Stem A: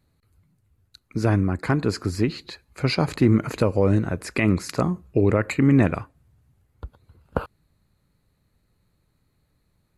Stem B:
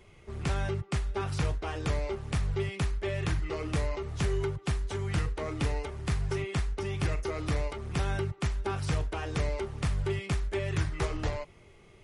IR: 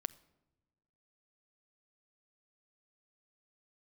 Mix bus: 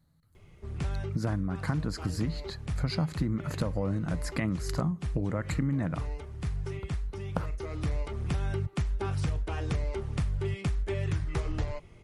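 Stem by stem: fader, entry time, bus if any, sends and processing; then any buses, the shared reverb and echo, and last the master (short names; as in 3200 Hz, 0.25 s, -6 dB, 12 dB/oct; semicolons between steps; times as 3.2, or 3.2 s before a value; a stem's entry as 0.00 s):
-3.5 dB, 0.00 s, no send, thirty-one-band EQ 160 Hz +10 dB, 400 Hz -12 dB, 2500 Hz -11 dB
-2.0 dB, 0.35 s, no send, low shelf 240 Hz +8 dB; auto duck -7 dB, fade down 1.20 s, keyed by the first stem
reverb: off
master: compressor 6:1, threshold -26 dBFS, peak gain reduction 11 dB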